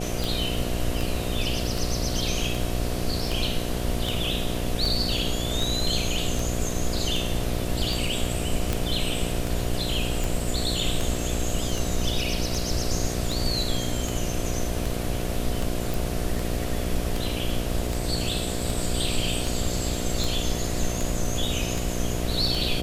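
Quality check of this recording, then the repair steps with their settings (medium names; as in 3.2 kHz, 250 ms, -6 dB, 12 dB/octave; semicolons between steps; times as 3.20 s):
buzz 60 Hz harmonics 12 -30 dBFS
tick 78 rpm
8.73 s: pop
15.94 s: pop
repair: de-click; de-hum 60 Hz, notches 12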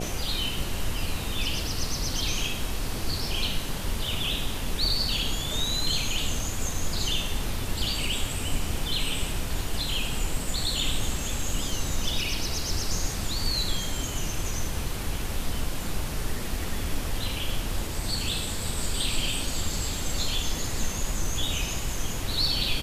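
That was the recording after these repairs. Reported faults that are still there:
nothing left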